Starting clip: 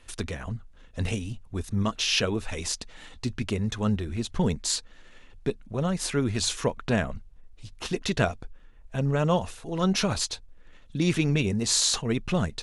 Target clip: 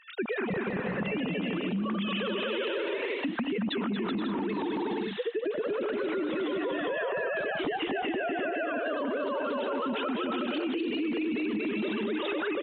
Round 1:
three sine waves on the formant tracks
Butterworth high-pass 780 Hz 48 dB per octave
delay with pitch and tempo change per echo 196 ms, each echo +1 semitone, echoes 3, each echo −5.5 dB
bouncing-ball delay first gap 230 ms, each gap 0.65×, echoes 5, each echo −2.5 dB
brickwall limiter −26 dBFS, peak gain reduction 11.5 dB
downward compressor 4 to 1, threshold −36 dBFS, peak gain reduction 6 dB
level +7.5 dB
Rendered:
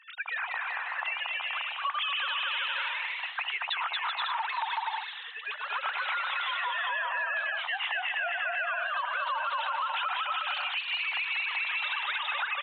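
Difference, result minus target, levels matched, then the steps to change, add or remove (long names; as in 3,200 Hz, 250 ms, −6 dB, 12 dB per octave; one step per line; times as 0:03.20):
1,000 Hz band +4.5 dB
remove: Butterworth high-pass 780 Hz 48 dB per octave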